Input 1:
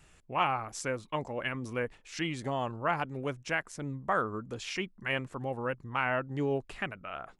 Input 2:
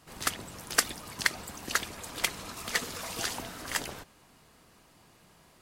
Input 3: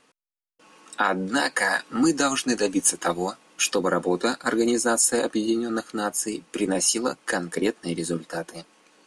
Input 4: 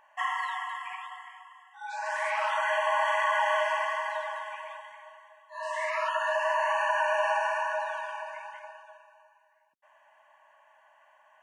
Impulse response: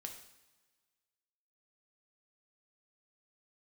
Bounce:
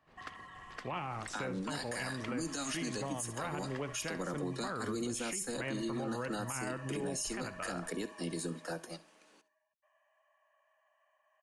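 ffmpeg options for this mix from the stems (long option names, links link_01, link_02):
-filter_complex "[0:a]lowpass=frequency=2700:poles=1,acrossover=split=370|1700[link_01][link_02][link_03];[link_01]acompressor=threshold=-41dB:ratio=4[link_04];[link_02]acompressor=threshold=-38dB:ratio=4[link_05];[link_03]acompressor=threshold=-41dB:ratio=4[link_06];[link_04][link_05][link_06]amix=inputs=3:normalize=0,adelay=550,volume=1.5dB,asplit=2[link_07][link_08];[link_08]volume=-15dB[link_09];[1:a]lowpass=3000,volume=-15dB[link_10];[2:a]acrossover=split=230|3000[link_11][link_12][link_13];[link_12]acompressor=threshold=-29dB:ratio=6[link_14];[link_11][link_14][link_13]amix=inputs=3:normalize=0,adelay=350,volume=-7dB,asplit=2[link_15][link_16];[link_16]volume=-18.5dB[link_17];[3:a]aecho=1:1:1.7:0.86,acompressor=threshold=-33dB:ratio=6,volume=-15.5dB[link_18];[link_09][link_17]amix=inputs=2:normalize=0,aecho=0:1:67|134|201|268:1|0.25|0.0625|0.0156[link_19];[link_07][link_10][link_15][link_18][link_19]amix=inputs=5:normalize=0,acrossover=split=170[link_20][link_21];[link_21]acompressor=threshold=-33dB:ratio=3[link_22];[link_20][link_22]amix=inputs=2:normalize=0,alimiter=level_in=4.5dB:limit=-24dB:level=0:latency=1:release=16,volume=-4.5dB"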